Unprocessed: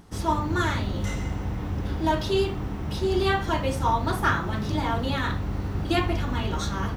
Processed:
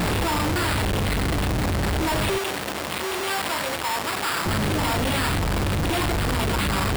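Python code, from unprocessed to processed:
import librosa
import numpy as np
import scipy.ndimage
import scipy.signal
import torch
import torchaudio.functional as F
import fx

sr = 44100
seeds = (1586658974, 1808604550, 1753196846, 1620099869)

y = np.sign(x) * np.sqrt(np.mean(np.square(x)))
y = fx.sample_hold(y, sr, seeds[0], rate_hz=6200.0, jitter_pct=0)
y = fx.highpass(y, sr, hz=620.0, slope=6, at=(2.38, 4.46))
y = F.gain(torch.from_numpy(y), 3.0).numpy()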